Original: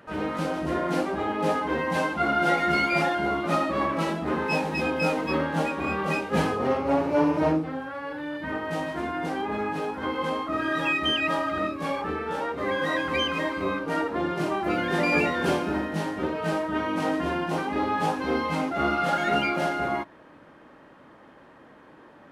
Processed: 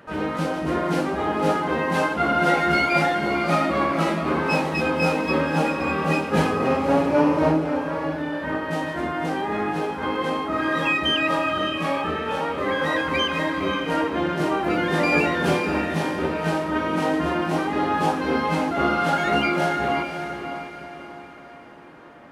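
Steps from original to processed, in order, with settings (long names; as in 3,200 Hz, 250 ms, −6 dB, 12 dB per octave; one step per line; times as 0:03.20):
feedback delay with all-pass diffusion 555 ms, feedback 42%, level −8 dB
convolution reverb RT60 1.1 s, pre-delay 3 ms, DRR 17 dB
level +3 dB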